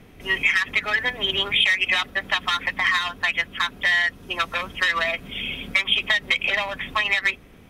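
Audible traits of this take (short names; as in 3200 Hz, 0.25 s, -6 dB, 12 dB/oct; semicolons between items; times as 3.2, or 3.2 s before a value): noise floor -48 dBFS; spectral tilt -1.5 dB/oct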